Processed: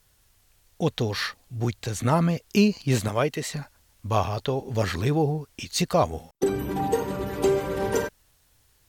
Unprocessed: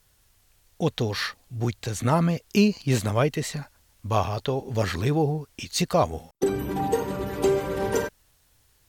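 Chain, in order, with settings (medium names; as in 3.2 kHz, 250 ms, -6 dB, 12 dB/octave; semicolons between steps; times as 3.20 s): 3.08–3.52 s: bass shelf 140 Hz -10.5 dB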